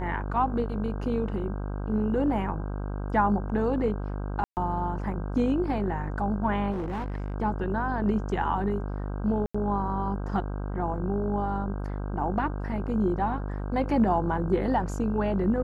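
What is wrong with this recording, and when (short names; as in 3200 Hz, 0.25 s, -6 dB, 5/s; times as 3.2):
buzz 50 Hz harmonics 32 -32 dBFS
4.44–4.57 gap 0.129 s
6.71–7.34 clipped -28 dBFS
9.46–9.54 gap 85 ms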